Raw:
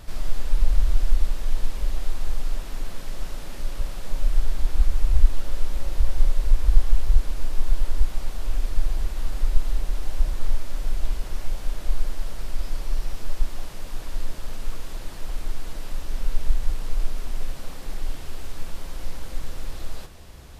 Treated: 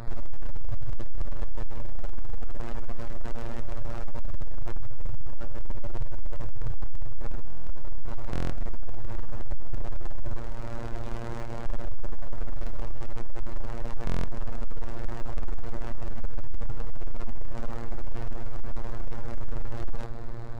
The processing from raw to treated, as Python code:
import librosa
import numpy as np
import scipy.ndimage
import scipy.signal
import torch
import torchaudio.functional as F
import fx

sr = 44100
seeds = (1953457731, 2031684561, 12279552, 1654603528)

p1 = fx.wiener(x, sr, points=15)
p2 = fx.over_compress(p1, sr, threshold_db=-19.0, ratio=-0.5)
p3 = p1 + (p2 * librosa.db_to_amplitude(-2.5))
p4 = fx.highpass(p3, sr, hz=61.0, slope=12, at=(10.36, 11.65), fade=0.02)
p5 = p4 + fx.echo_diffused(p4, sr, ms=452, feedback_pct=76, wet_db=-15.5, dry=0)
p6 = fx.robotise(p5, sr, hz=116.0)
p7 = 10.0 ** (-16.0 / 20.0) * np.tanh(p6 / 10.0 ** (-16.0 / 20.0))
p8 = fx.buffer_glitch(p7, sr, at_s=(7.46, 8.31, 14.05), block=1024, repeats=8)
p9 = np.interp(np.arange(len(p8)), np.arange(len(p8))[::3], p8[::3])
y = p9 * librosa.db_to_amplitude(3.0)